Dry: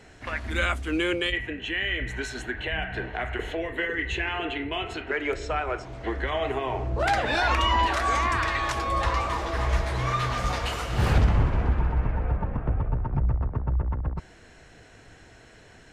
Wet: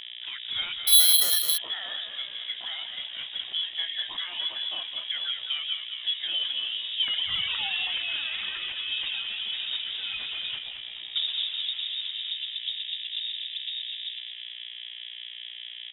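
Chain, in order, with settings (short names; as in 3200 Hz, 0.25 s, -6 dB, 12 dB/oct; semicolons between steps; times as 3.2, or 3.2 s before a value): 2.89–3.49 minimum comb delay 2.3 ms; reverb removal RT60 0.55 s; 10.58–11.16 inverse Chebyshev band-stop 140–1300 Hz, stop band 60 dB; buzz 60 Hz, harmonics 33, -38 dBFS -2 dB/oct; small resonant body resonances 330/560 Hz, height 17 dB, ringing for 25 ms; frequency-shifting echo 0.213 s, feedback 51%, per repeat +55 Hz, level -8 dB; inverted band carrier 3700 Hz; 0.87–1.58 careless resampling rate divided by 6×, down none, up zero stuff; gain -13.5 dB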